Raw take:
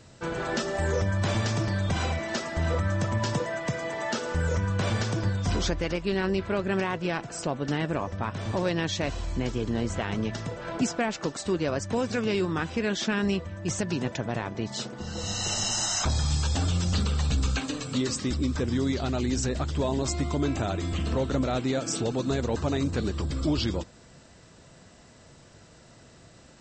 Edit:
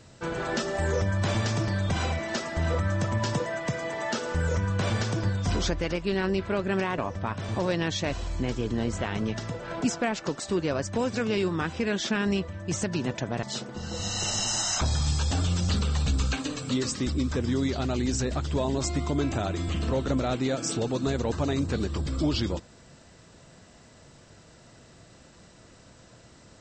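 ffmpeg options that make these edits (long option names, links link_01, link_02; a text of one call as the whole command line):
ffmpeg -i in.wav -filter_complex "[0:a]asplit=3[link_01][link_02][link_03];[link_01]atrim=end=6.982[link_04];[link_02]atrim=start=7.948:end=14.402[link_05];[link_03]atrim=start=14.668[link_06];[link_04][link_05]acrossfade=duration=0.004:curve1=hsin:curve2=hsin[link_07];[link_07][link_06]acrossfade=duration=0.004:curve1=hsin:curve2=hsin" out.wav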